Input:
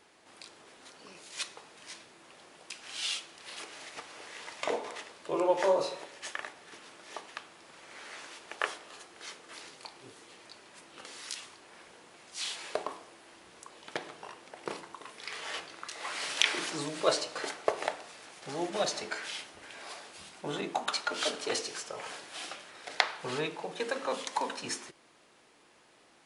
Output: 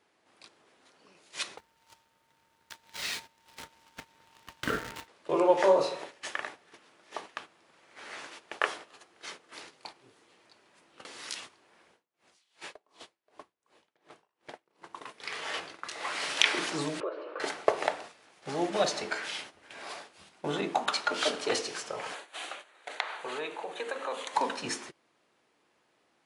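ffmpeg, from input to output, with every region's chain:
-filter_complex "[0:a]asettb=1/sr,asplit=3[a][b][c];[a]atrim=end=1.584[d];[b]atrim=start=1.58:end=5.08,asetpts=PTS-STARTPTS,afade=t=in:d=0.004:c=qsin,afade=t=out:st=3.496:d=0.004:c=qsin,acrusher=bits=7:dc=4:mix=0:aa=0.000001,aeval=exprs='val(0)*sin(2*PI*910*n/s)':c=same[e];[c]atrim=start=5.076[f];[d][e]acrossfade=d=0.004:c1=hsin:c2=qsin[g];[g][f]acrossfade=d=0.004:c1=qsin:c2=hsin,asettb=1/sr,asplit=3[h][i][j];[h]atrim=end=11.914[k];[i]atrim=start=11.91:end=14.82,asetpts=PTS-STARTPTS,afade=t=in:d=0.004:c=qsin,afade=t=out:st=2.906:d=0.004:c=qsin,aecho=1:1:529:0.251,atrim=end_sample=128331,aeval=exprs='val(0)*pow(10,-31*(0.5-0.5*cos(2*PI*2.7*n/s))/20)':c=same[l];[j]atrim=start=14.816[m];[k][l]acrossfade=d=0.004:c1=hsin:c2=qsin[n];[n][m]acrossfade=d=0.004:c1=qsin:c2=hsin,asettb=1/sr,asplit=3[o][p][q];[o]atrim=end=17.004[r];[p]atrim=start=17:end=17.4,asetpts=PTS-STARTPTS,afade=t=in:d=0.004:c=qsin,afade=t=out:st=0.396:d=0.004:c=qsin,acompressor=threshold=-38dB:ratio=5:attack=3.2:release=140:knee=1:detection=peak,highpass=f=330:w=0.5412,highpass=f=330:w=1.3066,equalizer=f=360:t=q:w=4:g=10,equalizer=f=530:t=q:w=4:g=4,equalizer=f=760:t=q:w=4:g=-8,equalizer=f=1.2k:t=q:w=4:g=3,equalizer=f=2k:t=q:w=4:g=-9,lowpass=f=2.3k:w=0.5412,lowpass=f=2.3k:w=1.3066[s];[q]atrim=start=17.396[t];[r][s]acrossfade=d=0.004:c1=hsin:c2=qsin[u];[u][t]acrossfade=d=0.004:c1=qsin:c2=hsin,asettb=1/sr,asplit=3[v][w][x];[v]atrim=end=22.144[y];[w]atrim=start=22.14:end=24.34,asetpts=PTS-STARTPTS,afade=t=in:d=0.004:c=qsin,afade=t=out:st=2.196:d=0.004:c=qsin,equalizer=f=5.2k:t=o:w=0.26:g=-14,acompressor=threshold=-36dB:ratio=2:attack=3.2:release=140:knee=1:detection=peak,highpass=420[z];[x]atrim=start=24.336[aa];[y][z]acrossfade=d=0.004:c1=hsin:c2=qsin[ab];[ab][aa]acrossfade=d=0.004:c1=qsin:c2=hsin,highpass=56,agate=range=-12dB:threshold=-47dB:ratio=16:detection=peak,highshelf=f=4.7k:g=-6,volume=4dB"

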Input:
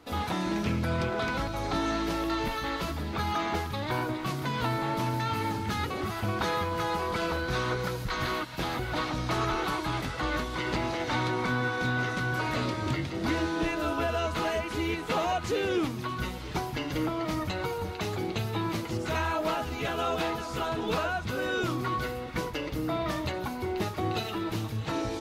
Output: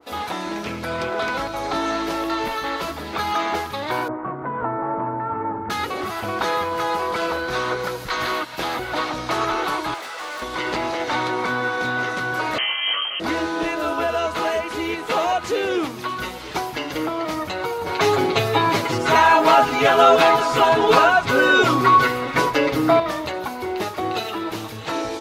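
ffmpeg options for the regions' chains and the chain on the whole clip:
-filter_complex "[0:a]asettb=1/sr,asplit=3[a][b][c];[a]atrim=end=4.084[d];[b]atrim=start=4.08:end=5.7,asetpts=PTS-STARTPTS,afade=t=in:d=0.004:c=qsin,afade=t=out:st=1.616:d=0.004:c=qsin,lowpass=f=1.5k:w=0.5412,lowpass=f=1.5k:w=1.3066,aemphasis=mode=reproduction:type=75kf[e];[c]atrim=start=5.696[f];[d][e]acrossfade=d=0.004:c1=hsin:c2=qsin[g];[g][f]acrossfade=d=0.004:c1=qsin:c2=hsin,asettb=1/sr,asplit=3[h][i][j];[h]atrim=end=9.944[k];[i]atrim=start=9.94:end=10.42,asetpts=PTS-STARTPTS,afade=t=in:d=0.004:c=qsin,afade=t=out:st=0.476:d=0.004:c=qsin,highpass=560,asoftclip=type=hard:threshold=-37dB[l];[j]atrim=start=10.416[m];[k][l]acrossfade=d=0.004:c1=hsin:c2=qsin[n];[n][m]acrossfade=d=0.004:c1=qsin:c2=hsin,asettb=1/sr,asplit=3[o][p][q];[o]atrim=end=12.584[r];[p]atrim=start=12.58:end=13.2,asetpts=PTS-STARTPTS,afade=t=in:d=0.004:c=qsin,afade=t=out:st=0.616:d=0.004:c=qsin,asplit=2[s][t];[t]adelay=20,volume=-4dB[u];[s][u]amix=inputs=2:normalize=0,atrim=end_sample=27342,lowpass=f=2.8k:t=q:w=0.5098,lowpass=f=2.8k:t=q:w=0.6013,lowpass=f=2.8k:t=q:w=0.9,lowpass=f=2.8k:t=q:w=2.563,afreqshift=-3300[v];[q]atrim=start=13.196[w];[r][v]acrossfade=d=0.004:c1=hsin:c2=qsin[x];[x][w]acrossfade=d=0.004:c1=qsin:c2=hsin,asettb=1/sr,asplit=3[y][z][aa];[y]atrim=end=17.864[ab];[z]atrim=start=17.86:end=23,asetpts=PTS-STARTPTS,afade=t=in:d=0.004:c=qsin,afade=t=out:st=5.136:d=0.004:c=qsin,highshelf=f=7.4k:g=-5.5,acontrast=54,aecho=1:1:7.3:0.95,atrim=end_sample=226674[ac];[aa]atrim=start=22.996[ad];[ab][ac]acrossfade=d=0.004:c1=hsin:c2=qsin[ae];[ae][ad]acrossfade=d=0.004:c1=qsin:c2=hsin,bass=f=250:g=-14,treble=f=4k:g=0,dynaudnorm=f=680:g=3:m=3dB,adynamicequalizer=threshold=0.0141:dfrequency=1600:dqfactor=0.7:tfrequency=1600:tqfactor=0.7:attack=5:release=100:ratio=0.375:range=1.5:mode=cutabove:tftype=highshelf,volume=5.5dB"

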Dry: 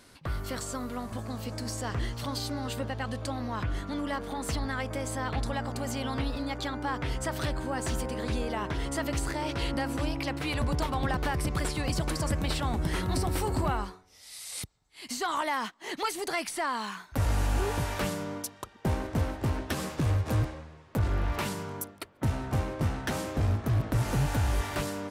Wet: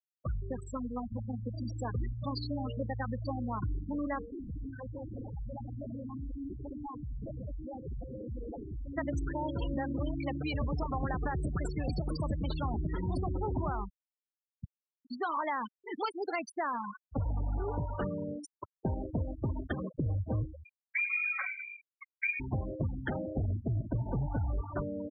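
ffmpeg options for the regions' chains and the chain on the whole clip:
-filter_complex "[0:a]asettb=1/sr,asplit=3[a][b][c];[a]atrim=end=4.224[d];[b]atrim=start=4.22:end=8.98,asetpts=PTS-STARTPTS,afade=t=in:d=0.004:c=qsin,afade=t=out:st=4.756:d=0.004:c=qsin,acrusher=samples=25:mix=1:aa=0.000001:lfo=1:lforange=25:lforate=1.4,volume=35.5dB,asoftclip=hard,volume=-35.5dB[e];[c]atrim=start=8.976[f];[d][e]acrossfade=d=0.004:c1=hsin:c2=qsin[g];[g][f]acrossfade=d=0.004:c1=qsin:c2=hsin,asettb=1/sr,asplit=3[h][i][j];[h]atrim=end=20.644[k];[i]atrim=start=20.64:end=22.4,asetpts=PTS-STARTPTS,afade=t=in:d=0.004:c=qsin,afade=t=out:st=1.756:d=0.004:c=qsin,bandreject=f=60:t=h:w=6,bandreject=f=120:t=h:w=6,bandreject=f=180:t=h:w=6,lowpass=f=2.1k:t=q:w=0.5098,lowpass=f=2.1k:t=q:w=0.6013,lowpass=f=2.1k:t=q:w=0.9,lowpass=f=2.1k:t=q:w=2.563,afreqshift=-2500[l];[j]atrim=start=22.396[m];[k][l]acrossfade=d=0.004:c1=hsin:c2=qsin[n];[n][m]acrossfade=d=0.004:c1=qsin:c2=hsin,adynamicequalizer=threshold=0.00355:dfrequency=2100:dqfactor=2.5:tfrequency=2100:tqfactor=2.5:attack=5:release=100:ratio=0.375:range=1.5:mode=cutabove:tftype=bell,afftfilt=real='re*gte(hypot(re,im),0.0562)':imag='im*gte(hypot(re,im),0.0562)':win_size=1024:overlap=0.75,acompressor=threshold=-29dB:ratio=6"

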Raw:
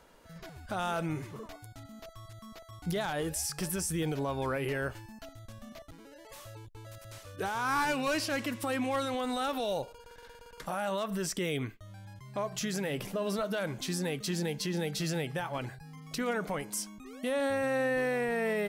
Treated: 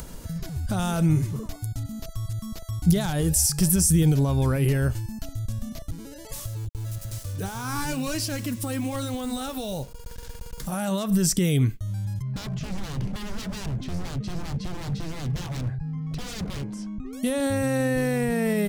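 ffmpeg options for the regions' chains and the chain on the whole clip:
-filter_complex "[0:a]asettb=1/sr,asplit=3[a][b][c];[a]atrim=end=6.464[d];[b]atrim=start=6.46:end=10.72,asetpts=PTS-STARTPTS,afade=t=in:d=0.004:c=qsin,afade=t=out:st=4.256:d=0.004:c=qsin,flanger=delay=1.2:depth=5.1:regen=-78:speed=1.1:shape=sinusoidal,acrusher=bits=8:mix=0:aa=0.5[e];[c]atrim=start=10.716[f];[d][e]acrossfade=d=0.004:c1=hsin:c2=qsin[g];[g][f]acrossfade=d=0.004:c1=qsin:c2=hsin,asettb=1/sr,asplit=3[h][i][j];[h]atrim=end=12.224[k];[i]atrim=start=12.22:end=17.13,asetpts=PTS-STARTPTS,afade=t=in:d=0.004:c=qsin,afade=t=out:st=4.906:d=0.004:c=qsin,lowpass=1.8k,aeval=exprs='0.0133*(abs(mod(val(0)/0.0133+3,4)-2)-1)':c=same[l];[j]atrim=start=17.126[m];[k][l]acrossfade=d=0.004:c1=hsin:c2=qsin[n];[n][m]acrossfade=d=0.004:c1=qsin:c2=hsin,lowshelf=f=480:g=4.5,acompressor=mode=upward:threshold=-39dB:ratio=2.5,bass=f=250:g=15,treble=f=4k:g=14"

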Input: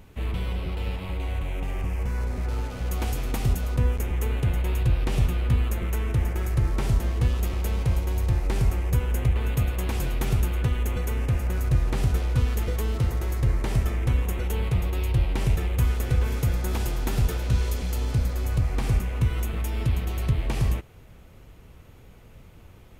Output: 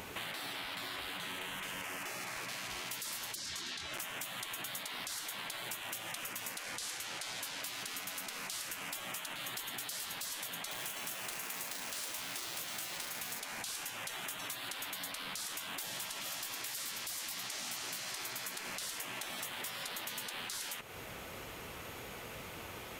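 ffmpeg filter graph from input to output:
-filter_complex "[0:a]asettb=1/sr,asplit=3[a][b][c];[a]atrim=end=3.354[d];[b]atrim=start=3.35:end=3.94,asetpts=PTS-STARTPTS,afade=t=in:d=0.004:c=qsin,afade=t=out:st=0.586:d=0.004:c=qsin,acontrast=48,highpass=420,lowpass=3.8k,asplit=2[e][f];[f]adelay=24,volume=-4dB[g];[e][g]amix=inputs=2:normalize=0,atrim=end_sample=26019[h];[c]atrim=start=3.936[i];[d][h]acrossfade=d=0.004:c1=hsin:c2=qsin[j];[j][i]acrossfade=d=0.004:c1=qsin:c2=hsin,asettb=1/sr,asplit=3[k][l][m];[k]atrim=end=6.634[n];[l]atrim=start=6.63:end=7.63,asetpts=PTS-STARTPTS,afade=t=in:d=0.004:c=qsin,afade=t=out:st=0.996:d=0.004:c=qsin,lowpass=11k,aecho=1:1:4.8:0.31,atrim=end_sample=44100[o];[m]atrim=start=7.626[p];[n][o]acrossfade=d=0.004:c1=hsin:c2=qsin[q];[q][p]acrossfade=d=0.004:c1=qsin:c2=hsin,asettb=1/sr,asplit=3[r][s][t];[r]atrim=end=10.714[u];[s]atrim=start=10.71:end=13.4,asetpts=PTS-STARTPTS,afade=t=in:d=0.004:c=qsin,afade=t=out:st=2.686:d=0.004:c=qsin,acrusher=bits=7:mode=log:mix=0:aa=0.000001,asplit=2[v][w];[w]adelay=40,volume=-9dB[x];[v][x]amix=inputs=2:normalize=0,atrim=end_sample=118629,acrossover=split=130|3000[y][z][aa];[z]acompressor=threshold=-35dB:ratio=3:attack=3.2:release=140:knee=2.83:detection=peak[ab];[y][ab][aa]amix=inputs=3:normalize=0[ac];[t]atrim=start=13.396[ad];[u][ac]acrossfade=d=0.004:c1=hsin:c2=qsin[ae];[ae][ad]acrossfade=d=0.004:c1=qsin:c2=hsin,highpass=f=840:p=1,afftfilt=real='re*lt(hypot(re,im),0.0141)':imag='im*lt(hypot(re,im),0.0141)':win_size=1024:overlap=0.75,acompressor=threshold=-53dB:ratio=6,volume=14dB"

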